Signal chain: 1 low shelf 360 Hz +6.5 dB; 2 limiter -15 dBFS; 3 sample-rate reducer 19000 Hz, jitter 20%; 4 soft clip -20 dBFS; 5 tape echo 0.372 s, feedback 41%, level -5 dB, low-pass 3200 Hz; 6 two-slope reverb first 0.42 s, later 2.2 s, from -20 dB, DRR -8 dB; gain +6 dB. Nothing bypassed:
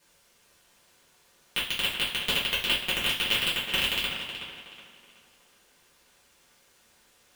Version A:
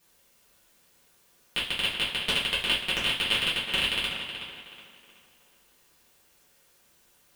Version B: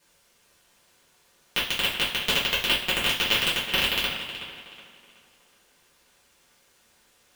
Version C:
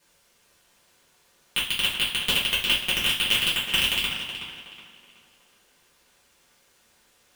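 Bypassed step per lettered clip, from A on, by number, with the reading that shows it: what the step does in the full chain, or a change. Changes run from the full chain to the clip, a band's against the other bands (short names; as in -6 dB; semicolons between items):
3, distortion -1 dB; 4, distortion -13 dB; 2, mean gain reduction 8.0 dB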